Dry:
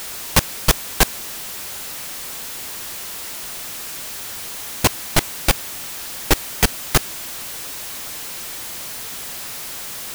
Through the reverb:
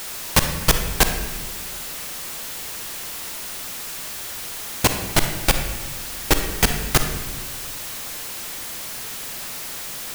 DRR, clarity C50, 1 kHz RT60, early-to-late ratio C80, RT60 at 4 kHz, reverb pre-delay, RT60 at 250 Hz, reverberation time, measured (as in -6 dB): 5.5 dB, 6.5 dB, 1.1 s, 8.5 dB, 0.85 s, 35 ms, 1.8 s, 1.3 s